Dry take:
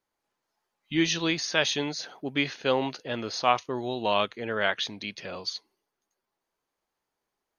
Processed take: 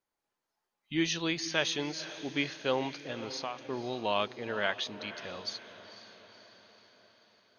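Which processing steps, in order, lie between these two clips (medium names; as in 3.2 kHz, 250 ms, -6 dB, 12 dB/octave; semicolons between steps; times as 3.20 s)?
3.05–3.69 s: compression 10:1, threshold -29 dBFS, peak gain reduction 13.5 dB; echo that smears into a reverb 497 ms, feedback 57%, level -14 dB; trim -5 dB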